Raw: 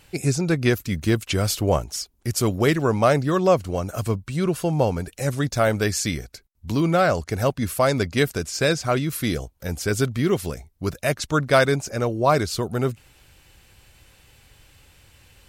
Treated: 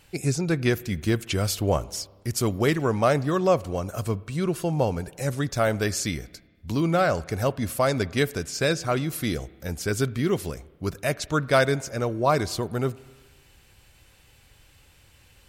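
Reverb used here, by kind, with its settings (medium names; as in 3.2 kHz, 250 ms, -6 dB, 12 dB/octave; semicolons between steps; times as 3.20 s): spring tank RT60 1.4 s, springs 30/51 ms, chirp 55 ms, DRR 19.5 dB; trim -3 dB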